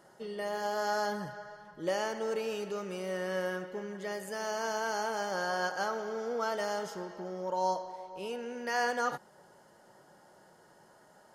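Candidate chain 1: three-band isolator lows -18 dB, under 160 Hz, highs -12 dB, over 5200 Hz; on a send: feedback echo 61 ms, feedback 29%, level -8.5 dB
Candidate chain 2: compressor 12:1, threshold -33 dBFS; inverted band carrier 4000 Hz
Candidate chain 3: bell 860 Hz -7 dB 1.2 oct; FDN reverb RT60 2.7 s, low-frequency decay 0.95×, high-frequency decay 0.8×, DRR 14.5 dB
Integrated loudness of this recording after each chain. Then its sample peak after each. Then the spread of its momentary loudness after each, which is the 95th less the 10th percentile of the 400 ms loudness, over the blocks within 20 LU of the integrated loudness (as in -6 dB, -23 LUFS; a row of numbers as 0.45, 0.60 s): -34.5, -35.5, -37.5 LUFS; -18.5, -24.0, -22.5 dBFS; 10, 5, 8 LU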